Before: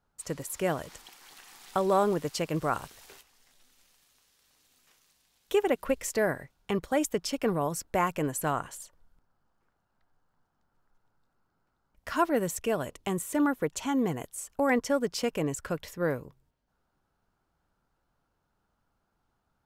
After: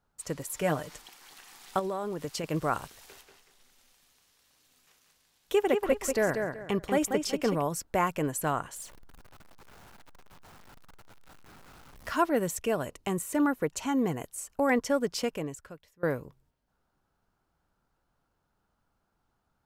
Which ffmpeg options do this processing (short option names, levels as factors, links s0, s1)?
-filter_complex "[0:a]asettb=1/sr,asplit=3[s0][s1][s2];[s0]atrim=end=0.544[s3];[s1]atrim=start=0.54:end=0.99,asetpts=PTS-STARTPTS,afade=t=in:d=0.004:c=qsin,afade=t=out:st=0.446:d=0.004:c=qsin,aecho=1:1:6.7:0.53,atrim=end_sample=19845[s4];[s2]atrim=start=0.986[s5];[s3][s4]acrossfade=d=0.004:c1=hsin:c2=qsin[s6];[s6][s5]acrossfade=d=0.004:c1=qsin:c2=hsin,asettb=1/sr,asplit=3[s7][s8][s9];[s7]atrim=end=1.794[s10];[s8]atrim=start=1.79:end=2.44,asetpts=PTS-STARTPTS,afade=t=in:d=0.004:c=qsin,afade=t=out:st=0.646:d=0.004:c=qsin,acompressor=threshold=0.0355:ratio=10:attack=3.2:release=140:knee=1:detection=peak[s11];[s9]atrim=start=2.436[s12];[s10][s11]acrossfade=d=0.004:c1=hsin:c2=qsin[s13];[s13][s12]acrossfade=d=0.004:c1=qsin:c2=hsin,asettb=1/sr,asplit=3[s14][s15][s16];[s14]atrim=end=2.984[s17];[s15]atrim=start=2.98:end=7.62,asetpts=PTS-STARTPTS,afade=t=in:d=0.004:c=qsin,afade=t=out:st=4.636:d=0.004:c=qsin,asplit=2[s18][s19];[s19]adelay=188,lowpass=f=4100:p=1,volume=0.562,asplit=2[s20][s21];[s21]adelay=188,lowpass=f=4100:p=1,volume=0.27,asplit=2[s22][s23];[s23]adelay=188,lowpass=f=4100:p=1,volume=0.27,asplit=2[s24][s25];[s25]adelay=188,lowpass=f=4100:p=1,volume=0.27[s26];[s18][s20][s22][s24][s26]amix=inputs=5:normalize=0,atrim=end_sample=204624[s27];[s16]atrim=start=7.616[s28];[s17][s27]acrossfade=d=0.004:c1=hsin:c2=qsin[s29];[s29][s28]acrossfade=d=0.004:c1=qsin:c2=hsin,asettb=1/sr,asplit=3[s30][s31][s32];[s30]atrim=end=8.764[s33];[s31]atrim=start=8.76:end=12.16,asetpts=PTS-STARTPTS,afade=t=in:d=0.004:c=qsin,afade=t=out:st=3.396:d=0.004:c=qsin,aeval=exprs='val(0)+0.5*0.00473*sgn(val(0))':c=same[s34];[s32]atrim=start=12.156[s35];[s33][s34]acrossfade=d=0.004:c1=hsin:c2=qsin[s36];[s36][s35]acrossfade=d=0.004:c1=qsin:c2=hsin,asettb=1/sr,asplit=3[s37][s38][s39];[s37]atrim=end=12.674[s40];[s38]atrim=start=12.67:end=14.67,asetpts=PTS-STARTPTS,afade=t=in:d=0.004:c=qsin,afade=t=out:st=1.996:d=0.004:c=qsin,bandreject=f=3400:w=12[s41];[s39]atrim=start=14.666[s42];[s40][s41]acrossfade=d=0.004:c1=hsin:c2=qsin[s43];[s43][s42]acrossfade=d=0.004:c1=qsin:c2=hsin,asplit=2[s44][s45];[s44]atrim=end=16.03,asetpts=PTS-STARTPTS,afade=t=out:st=15.2:d=0.83:c=qua:silence=0.0707946[s46];[s45]atrim=start=16.03,asetpts=PTS-STARTPTS,afade=t=in:d=0.004:c=hsin:silence=0.0707946[s47];[s46][s47]concat=n=2:v=0:a=1"